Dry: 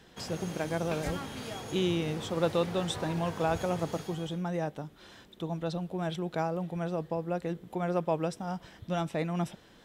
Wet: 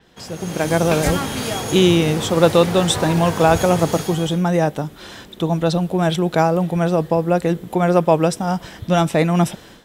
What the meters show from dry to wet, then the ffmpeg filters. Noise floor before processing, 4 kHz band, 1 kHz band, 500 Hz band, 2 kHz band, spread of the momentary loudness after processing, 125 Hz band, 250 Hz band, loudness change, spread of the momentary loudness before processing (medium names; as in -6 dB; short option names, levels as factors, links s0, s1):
-57 dBFS, +15.5 dB, +15.0 dB, +15.0 dB, +15.0 dB, 9 LU, +15.0 dB, +15.0 dB, +15.0 dB, 8 LU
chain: -af "dynaudnorm=f=360:g=3:m=4.47,adynamicequalizer=threshold=0.00708:dfrequency=6200:dqfactor=0.7:tfrequency=6200:tqfactor=0.7:attack=5:release=100:ratio=0.375:range=3:mode=boostabove:tftype=highshelf,volume=1.33"